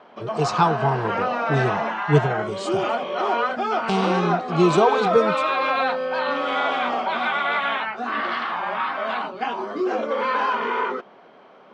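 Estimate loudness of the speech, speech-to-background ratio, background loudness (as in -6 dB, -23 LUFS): -23.0 LUFS, 1.0 dB, -24.0 LUFS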